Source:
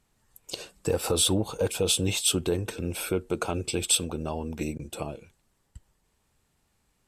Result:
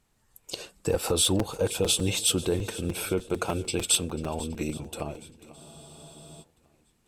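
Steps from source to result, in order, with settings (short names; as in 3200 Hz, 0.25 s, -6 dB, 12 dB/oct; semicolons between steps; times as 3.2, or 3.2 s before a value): swung echo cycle 0.819 s, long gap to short 1.5:1, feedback 31%, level -18 dB; crackling interface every 0.15 s, samples 256, repeat, from 0.64; spectral freeze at 5.58, 0.85 s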